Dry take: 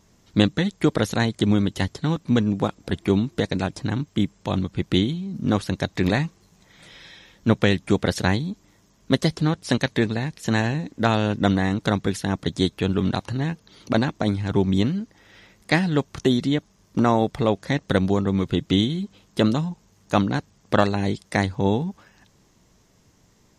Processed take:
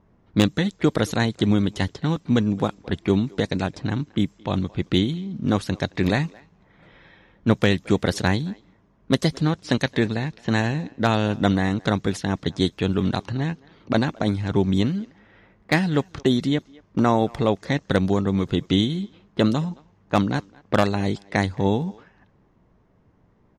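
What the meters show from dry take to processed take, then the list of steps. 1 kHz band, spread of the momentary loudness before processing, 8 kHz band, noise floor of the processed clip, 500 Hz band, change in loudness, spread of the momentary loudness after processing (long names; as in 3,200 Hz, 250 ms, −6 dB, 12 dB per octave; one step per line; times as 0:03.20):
0.0 dB, 7 LU, −1.0 dB, −60 dBFS, 0.0 dB, 0.0 dB, 7 LU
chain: low-pass that shuts in the quiet parts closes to 1,400 Hz, open at −18 dBFS
far-end echo of a speakerphone 220 ms, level −23 dB
wave folding −6.5 dBFS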